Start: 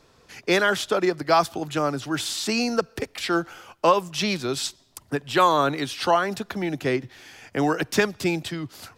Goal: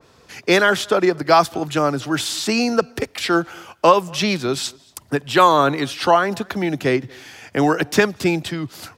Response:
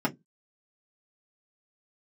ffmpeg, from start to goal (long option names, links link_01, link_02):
-filter_complex "[0:a]highpass=51,asplit=2[link_01][link_02];[link_02]adelay=233.2,volume=-27dB,highshelf=frequency=4000:gain=-5.25[link_03];[link_01][link_03]amix=inputs=2:normalize=0,adynamicequalizer=threshold=0.0158:dfrequency=2600:dqfactor=0.7:tfrequency=2600:tqfactor=0.7:attack=5:release=100:ratio=0.375:range=2:mode=cutabove:tftype=highshelf,volume=5.5dB"